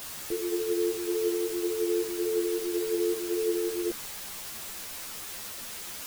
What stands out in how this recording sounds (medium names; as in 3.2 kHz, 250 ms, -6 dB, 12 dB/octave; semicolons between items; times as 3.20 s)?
tremolo triangle 2.7 Hz, depth 35%; a quantiser's noise floor 6-bit, dither triangular; a shimmering, thickened sound